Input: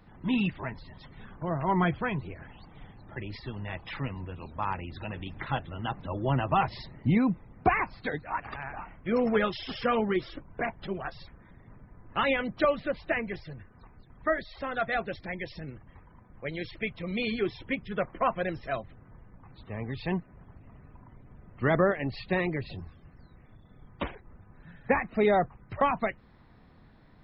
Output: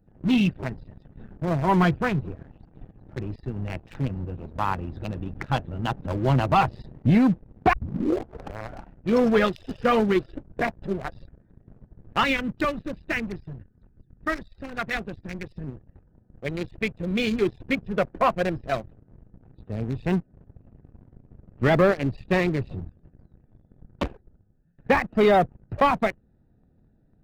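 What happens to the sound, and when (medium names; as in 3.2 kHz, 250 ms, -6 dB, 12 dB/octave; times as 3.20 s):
7.73 s: tape start 1.11 s
12.24–15.67 s: peaking EQ 640 Hz -11.5 dB 1.1 oct
24.06–24.78 s: fade out, to -17 dB
whole clip: local Wiener filter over 41 samples; tone controls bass 0 dB, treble +9 dB; waveshaping leveller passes 2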